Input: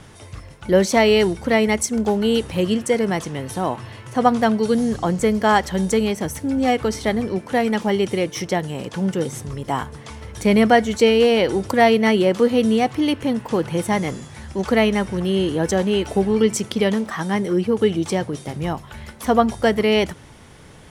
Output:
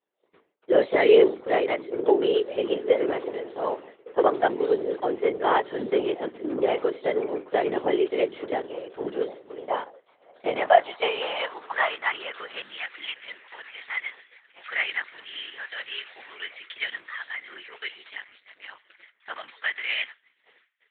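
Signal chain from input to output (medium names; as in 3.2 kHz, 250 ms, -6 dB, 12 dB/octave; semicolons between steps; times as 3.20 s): flange 0.22 Hz, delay 1 ms, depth 6.7 ms, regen +48%; repeats whose band climbs or falls 580 ms, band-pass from 220 Hz, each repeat 0.7 oct, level -11 dB; LPC vocoder at 8 kHz whisper; expander -28 dBFS; high-pass sweep 410 Hz -> 1.9 kHz, 9.43–13.03 s; 18.10–19.03 s: ring modulator 100 Hz; trim -2.5 dB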